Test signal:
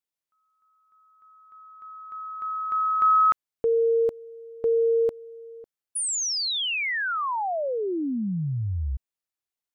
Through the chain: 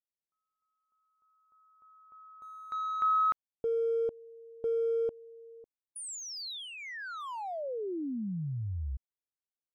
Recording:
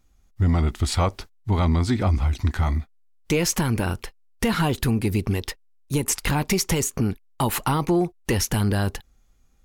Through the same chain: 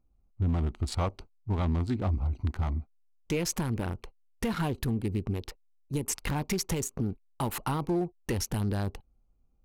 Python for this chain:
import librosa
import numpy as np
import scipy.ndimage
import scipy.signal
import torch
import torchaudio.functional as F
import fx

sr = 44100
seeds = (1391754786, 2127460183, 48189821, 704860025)

y = fx.wiener(x, sr, points=25)
y = y * librosa.db_to_amplitude(-7.5)